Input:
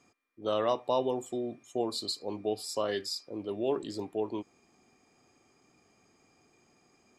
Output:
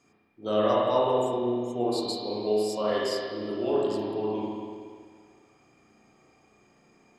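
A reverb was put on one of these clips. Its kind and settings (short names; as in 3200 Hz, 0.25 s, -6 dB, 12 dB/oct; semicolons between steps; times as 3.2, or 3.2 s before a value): spring tank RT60 1.9 s, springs 33/47 ms, chirp 40 ms, DRR -5.5 dB; gain -1 dB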